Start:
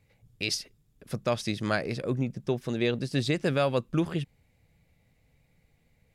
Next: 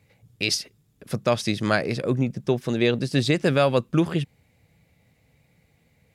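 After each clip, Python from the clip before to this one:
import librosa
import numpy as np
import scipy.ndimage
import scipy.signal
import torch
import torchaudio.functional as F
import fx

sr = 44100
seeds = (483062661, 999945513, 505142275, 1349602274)

y = scipy.signal.sosfilt(scipy.signal.butter(2, 77.0, 'highpass', fs=sr, output='sos'), x)
y = F.gain(torch.from_numpy(y), 6.0).numpy()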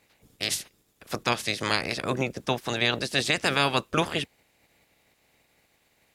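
y = fx.spec_clip(x, sr, under_db=22)
y = F.gain(torch.from_numpy(y), -4.0).numpy()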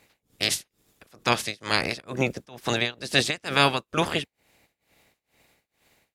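y = x * (1.0 - 0.96 / 2.0 + 0.96 / 2.0 * np.cos(2.0 * np.pi * 2.2 * (np.arange(len(x)) / sr)))
y = F.gain(torch.from_numpy(y), 4.5).numpy()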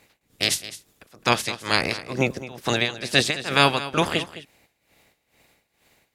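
y = x + 10.0 ** (-15.0 / 20.0) * np.pad(x, (int(211 * sr / 1000.0), 0))[:len(x)]
y = F.gain(torch.from_numpy(y), 2.5).numpy()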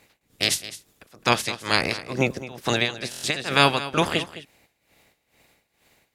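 y = fx.buffer_glitch(x, sr, at_s=(3.1,), block=1024, repeats=5)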